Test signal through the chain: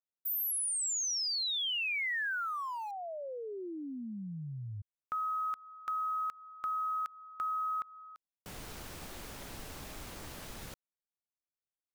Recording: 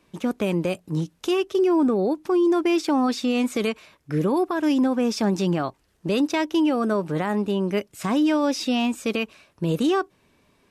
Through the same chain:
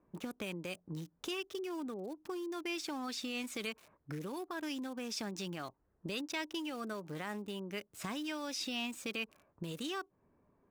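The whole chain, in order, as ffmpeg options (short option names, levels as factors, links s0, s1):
-filter_complex "[0:a]acrossover=split=1500[s0][s1];[s0]acompressor=threshold=0.0282:ratio=8[s2];[s1]aeval=exprs='val(0)*gte(abs(val(0)),0.00596)':c=same[s3];[s2][s3]amix=inputs=2:normalize=0,volume=0.376"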